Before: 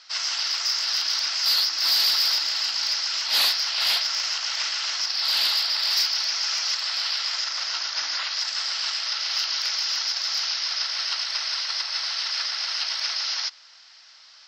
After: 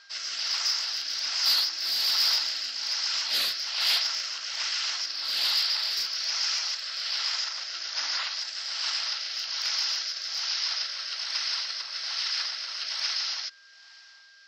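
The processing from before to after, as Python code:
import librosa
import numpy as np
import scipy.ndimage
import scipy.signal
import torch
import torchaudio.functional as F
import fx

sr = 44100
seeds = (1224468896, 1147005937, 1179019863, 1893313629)

y = fx.rotary(x, sr, hz=1.2)
y = y + 10.0 ** (-53.0 / 20.0) * np.sin(2.0 * np.pi * 1600.0 * np.arange(len(y)) / sr)
y = y * 10.0 ** (-1.5 / 20.0)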